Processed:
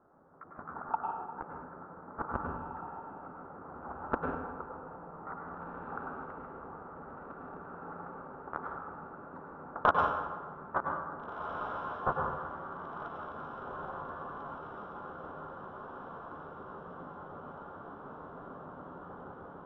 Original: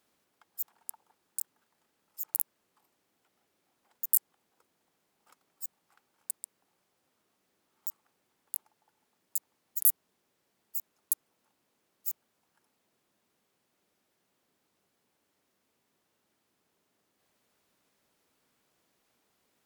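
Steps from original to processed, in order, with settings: trilling pitch shifter +7.5 st, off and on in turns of 74 ms; Chebyshev low-pass 1400 Hz, order 5; AGC gain up to 15 dB; soft clip -24.5 dBFS, distortion -19 dB; diffused feedback echo 1.824 s, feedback 65%, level -8 dB; reverb RT60 1.3 s, pre-delay 95 ms, DRR 0.5 dB; gain +13.5 dB

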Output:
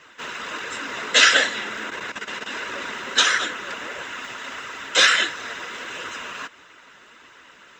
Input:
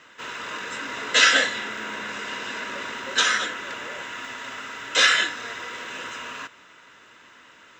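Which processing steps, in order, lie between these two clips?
1.9–2.52 level quantiser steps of 11 dB; harmonic-percussive split percussive +8 dB; flange 1.5 Hz, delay 1.7 ms, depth 4.1 ms, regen -44%; gain +1 dB

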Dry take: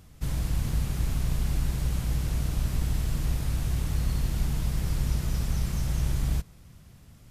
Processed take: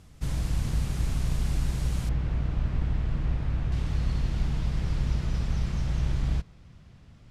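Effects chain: LPF 9600 Hz 12 dB/oct, from 2.09 s 2400 Hz, from 3.72 s 4400 Hz

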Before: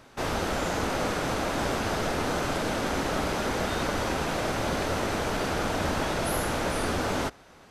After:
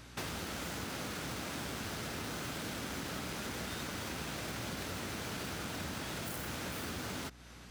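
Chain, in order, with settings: tracing distortion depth 0.15 ms; HPF 100 Hz 12 dB/oct; bell 640 Hz -11 dB 2.5 oct; compressor 6:1, threshold -42 dBFS, peak gain reduction 11.5 dB; hum 60 Hz, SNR 16 dB; gain +4 dB

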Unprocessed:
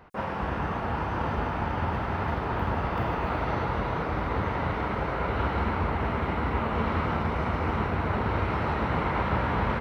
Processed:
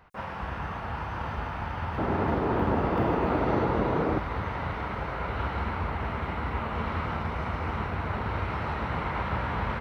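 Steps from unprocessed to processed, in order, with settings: bell 330 Hz -7.5 dB 2 oct, from 1.98 s +10 dB, from 4.18 s -4.5 dB; gain -2 dB

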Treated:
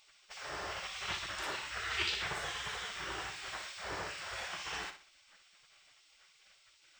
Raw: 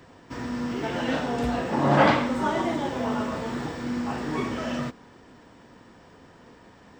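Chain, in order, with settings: spectral gate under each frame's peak -20 dB weak; flutter echo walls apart 10.5 m, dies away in 0.38 s

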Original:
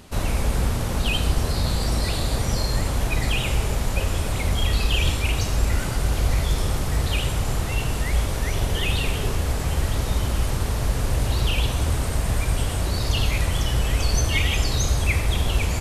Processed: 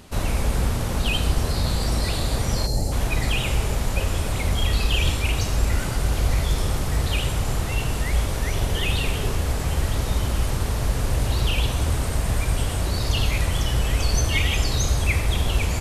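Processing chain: spectral gain 2.66–2.92, 890–3900 Hz -15 dB

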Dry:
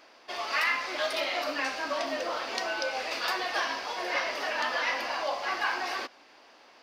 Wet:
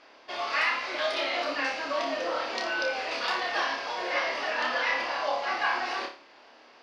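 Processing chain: LPF 5200 Hz 12 dB/oct; flutter echo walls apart 4.9 m, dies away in 0.36 s

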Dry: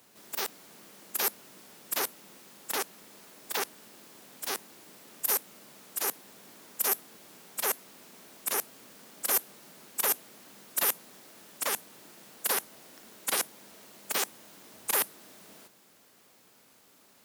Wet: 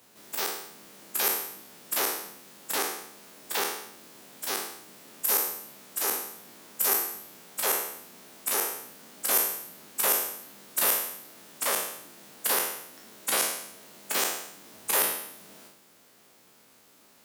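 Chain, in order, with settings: spectral trails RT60 0.77 s

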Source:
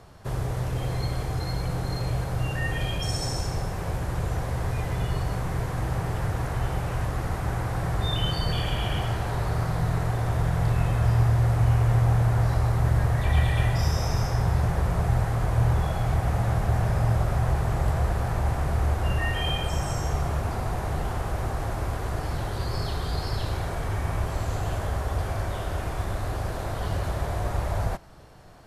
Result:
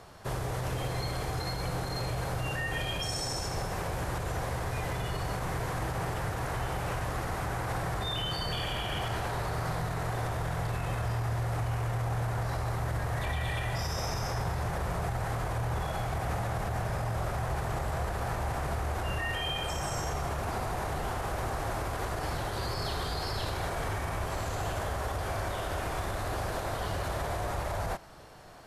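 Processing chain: low shelf 270 Hz -8.5 dB; limiter -26.5 dBFS, peak gain reduction 10 dB; gain +2.5 dB

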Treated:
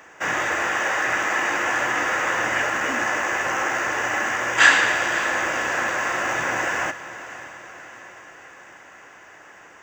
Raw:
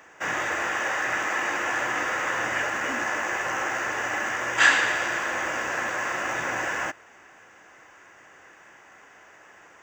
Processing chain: diffused feedback echo 0.556 s, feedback 57%, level -14.5 dB; gain +4 dB

